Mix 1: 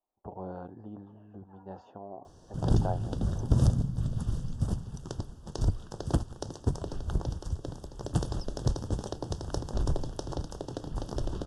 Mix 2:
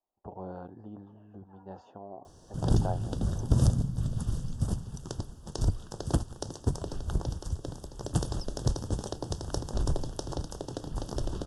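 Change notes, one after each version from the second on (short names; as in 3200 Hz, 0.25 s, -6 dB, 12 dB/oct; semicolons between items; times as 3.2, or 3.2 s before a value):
speech: send -6.5 dB; master: add high shelf 7100 Hz +9 dB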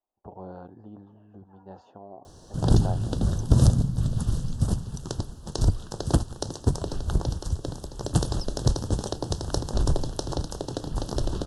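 background +5.5 dB; master: remove notch 4100 Hz, Q 8.1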